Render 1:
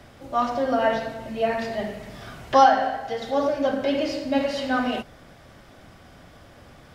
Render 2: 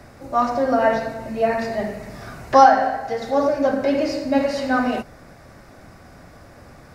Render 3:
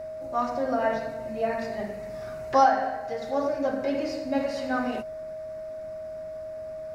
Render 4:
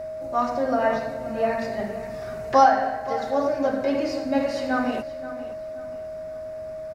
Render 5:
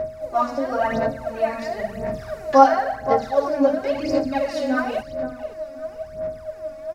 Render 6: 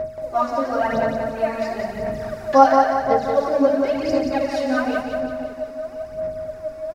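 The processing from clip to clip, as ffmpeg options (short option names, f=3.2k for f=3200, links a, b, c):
-af "equalizer=f=3.2k:t=o:w=0.37:g=-13.5,volume=4dB"
-af "aeval=exprs='val(0)+0.0501*sin(2*PI*630*n/s)':c=same,volume=-8dB"
-filter_complex "[0:a]asplit=2[a][b];[b]adelay=526,lowpass=f=4.8k:p=1,volume=-14.5dB,asplit=2[c][d];[d]adelay=526,lowpass=f=4.8k:p=1,volume=0.37,asplit=2[e][f];[f]adelay=526,lowpass=f=4.8k:p=1,volume=0.37[g];[a][c][e][g]amix=inputs=4:normalize=0,volume=3.5dB"
-af "aphaser=in_gain=1:out_gain=1:delay=3.6:decay=0.72:speed=0.96:type=sinusoidal,volume=-1.5dB"
-af "aecho=1:1:178|356|534|712|890:0.562|0.242|0.104|0.0447|0.0192"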